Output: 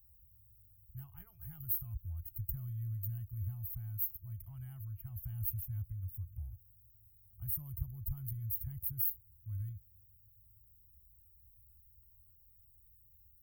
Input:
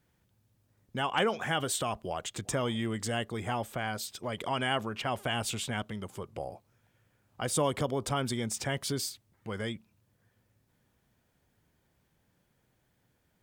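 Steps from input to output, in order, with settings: inverse Chebyshev band-stop 210–8200 Hz, stop band 50 dB; treble shelf 12 kHz +10 dB; trim +13 dB

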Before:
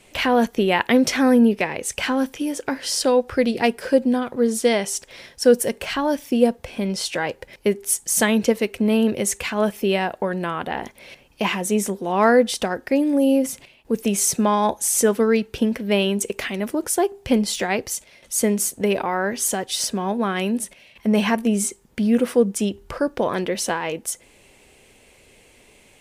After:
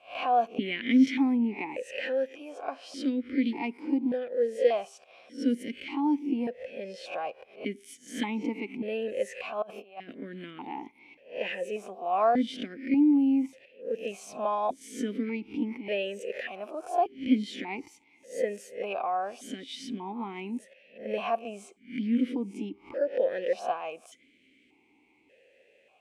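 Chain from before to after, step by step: reverse spectral sustain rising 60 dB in 0.34 s; 9.62–10.13 s: compressor with a negative ratio -27 dBFS, ratio -0.5; stepped vowel filter 1.7 Hz

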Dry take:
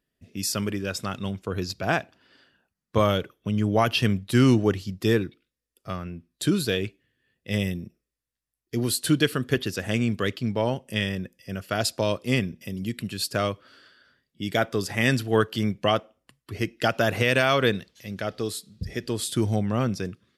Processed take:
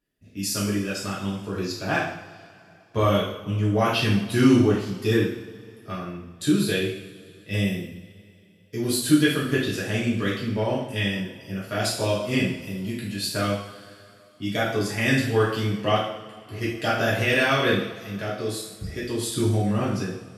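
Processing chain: two-slope reverb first 0.69 s, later 3.3 s, from -21 dB, DRR -7.5 dB; trim -7 dB

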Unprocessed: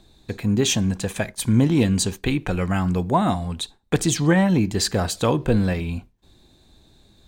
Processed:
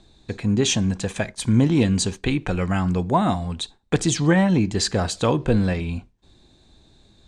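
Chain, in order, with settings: low-pass 8.7 kHz 24 dB/octave

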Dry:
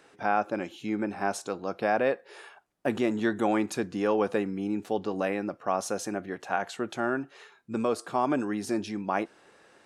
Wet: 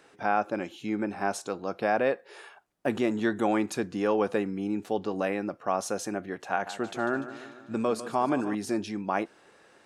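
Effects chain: 6.51–8.55 s: modulated delay 148 ms, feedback 60%, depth 59 cents, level -13 dB

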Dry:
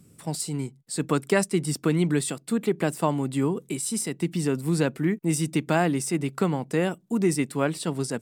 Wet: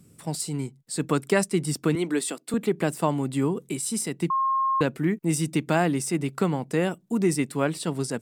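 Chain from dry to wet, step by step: 1.95–2.54 s: high-pass 240 Hz 24 dB/octave; 4.30–4.81 s: bleep 1.07 kHz -20.5 dBFS

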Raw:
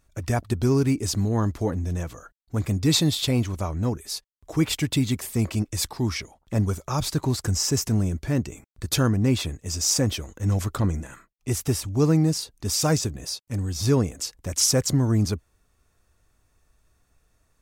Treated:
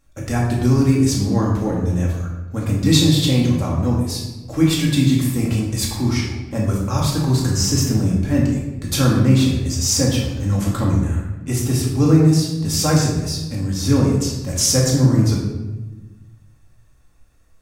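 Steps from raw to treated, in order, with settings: simulated room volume 550 m³, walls mixed, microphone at 2.2 m

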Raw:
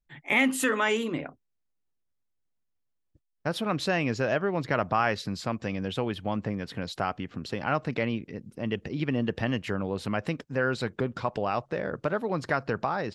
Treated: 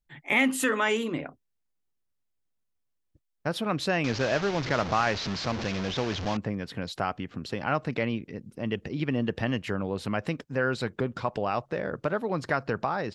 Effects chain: 4.04–6.37 s: one-bit delta coder 32 kbps, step -27 dBFS

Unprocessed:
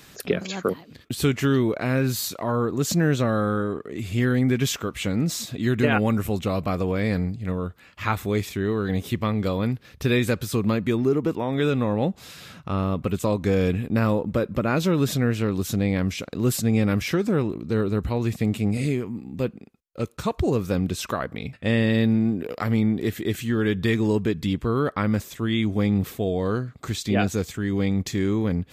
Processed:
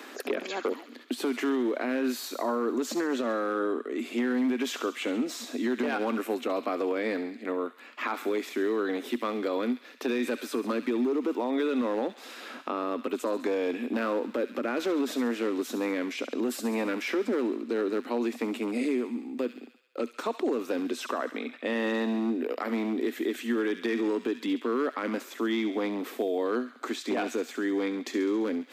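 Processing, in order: treble shelf 3.5 kHz -10.5 dB; overload inside the chain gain 15.5 dB; Chebyshev high-pass 240 Hz, order 6; on a send: feedback echo behind a high-pass 68 ms, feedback 59%, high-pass 2.1 kHz, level -9.5 dB; on the sum: peak limiter -21 dBFS, peak gain reduction 10.5 dB; three bands compressed up and down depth 40%; trim +1 dB

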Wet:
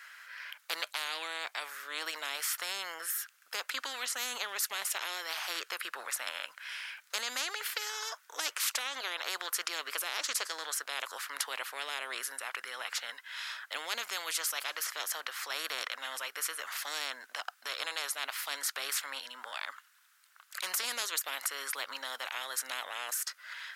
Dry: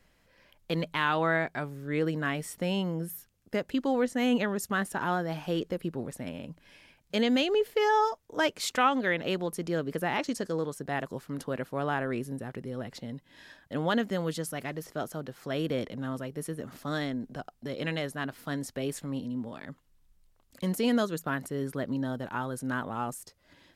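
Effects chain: ladder high-pass 1.3 kHz, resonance 65%; spectrum-flattening compressor 10:1; trim +5 dB

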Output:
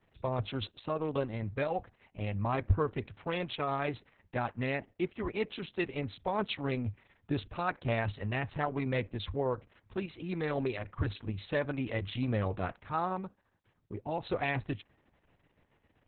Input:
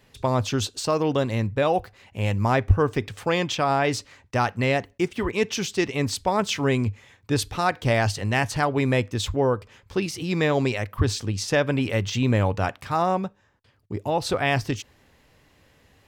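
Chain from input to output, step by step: local Wiener filter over 9 samples; trim -9 dB; Opus 6 kbps 48 kHz

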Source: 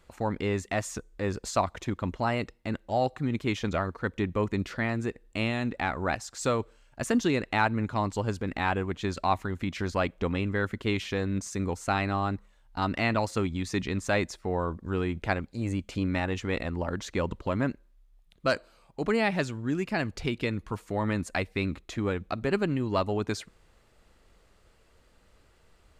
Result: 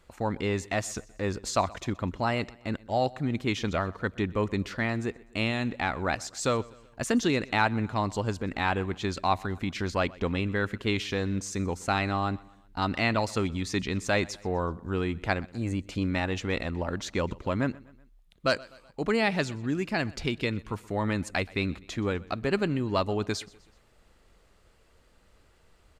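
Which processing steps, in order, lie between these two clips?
dynamic bell 4.4 kHz, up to +4 dB, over -45 dBFS, Q 0.85; on a send: feedback delay 125 ms, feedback 49%, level -22.5 dB

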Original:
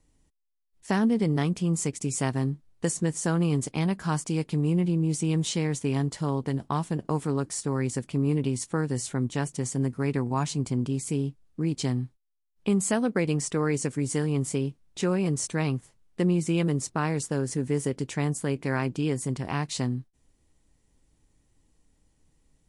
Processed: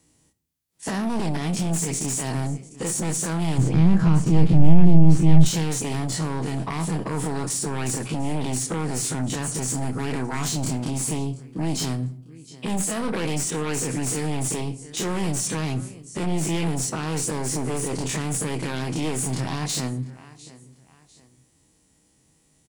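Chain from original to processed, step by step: every event in the spectrogram widened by 60 ms; treble shelf 4.6 kHz +7.5 dB; feedback delay 698 ms, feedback 36%, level -24 dB; peak limiter -16.5 dBFS, peak gain reduction 8 dB; high-pass 90 Hz; hum notches 60/120 Hz; sine folder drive 9 dB, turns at -12.5 dBFS; 3.58–5.46 s: RIAA curve playback; simulated room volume 950 m³, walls furnished, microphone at 0.61 m; trim -10 dB

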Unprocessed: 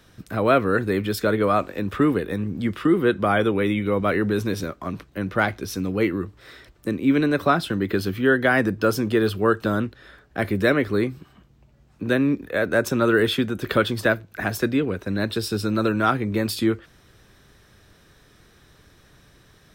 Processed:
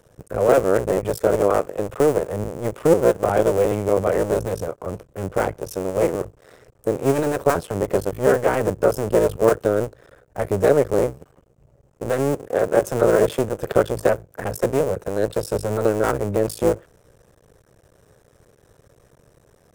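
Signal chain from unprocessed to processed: cycle switcher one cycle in 2, muted; graphic EQ 125/250/500/2000/4000/8000 Hz +5/-4/+12/-4/-10/+6 dB; trim -1 dB

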